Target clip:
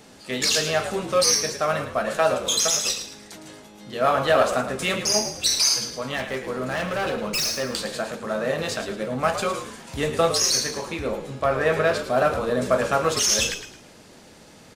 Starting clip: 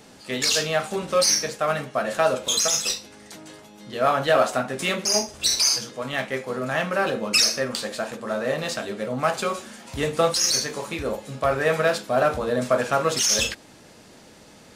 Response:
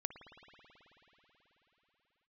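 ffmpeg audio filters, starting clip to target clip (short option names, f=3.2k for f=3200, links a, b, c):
-filter_complex "[0:a]asettb=1/sr,asplit=3[a][b][c];[a]atrim=end=6.164[d];[b]atrim=start=6.16:end=7.69,asetpts=PTS-STARTPTS,afade=t=in:d=0.004:c=qsin,afade=t=out:st=1.526:d=0.004:c=qsin,asoftclip=type=hard:threshold=-22.5dB[e];[c]atrim=start=7.686[f];[d][e]acrossfade=d=0.004:c1=hsin:c2=qsin[g];[g][f]acrossfade=d=0.004:c1=qsin:c2=hsin,asettb=1/sr,asplit=3[h][i][j];[h]atrim=end=10.714[k];[i]atrim=start=10.71:end=11.99,asetpts=PTS-STARTPTS,afade=t=in:d=0.004:c=qsin,afade=t=out:st=1.276:d=0.004:c=qsin,highshelf=f=6.2k:g=-7[l];[j]atrim=start=11.986[m];[k][l]acrossfade=d=0.004:c1=hsin:c2=qsin[n];[n][m]acrossfade=d=0.004:c1=qsin:c2=hsin,asplit=5[o][p][q][r][s];[p]adelay=109,afreqshift=-56,volume=-10dB[t];[q]adelay=218,afreqshift=-112,volume=-19.1dB[u];[r]adelay=327,afreqshift=-168,volume=-28.2dB[v];[s]adelay=436,afreqshift=-224,volume=-37.4dB[w];[o][t][u][v][w]amix=inputs=5:normalize=0"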